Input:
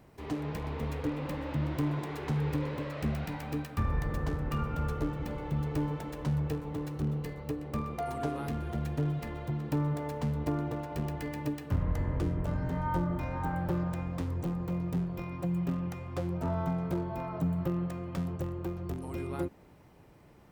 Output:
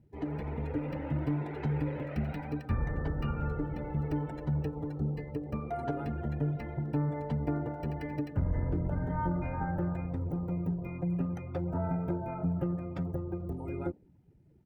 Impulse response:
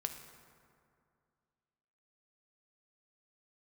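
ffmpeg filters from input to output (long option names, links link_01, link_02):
-af "afftdn=noise_reduction=20:noise_floor=-48,asuperstop=centerf=1100:order=4:qfactor=5.6,atempo=1.4"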